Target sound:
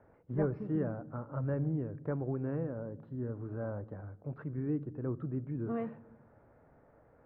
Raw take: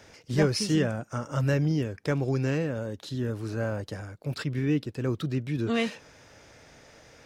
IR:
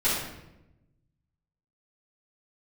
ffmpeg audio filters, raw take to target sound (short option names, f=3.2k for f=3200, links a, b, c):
-filter_complex "[0:a]lowpass=f=1.3k:w=0.5412,lowpass=f=1.3k:w=1.3066,asplit=2[a][b];[1:a]atrim=start_sample=2205,lowshelf=f=450:g=9[c];[b][c]afir=irnorm=-1:irlink=0,volume=-33dB[d];[a][d]amix=inputs=2:normalize=0,volume=-8dB"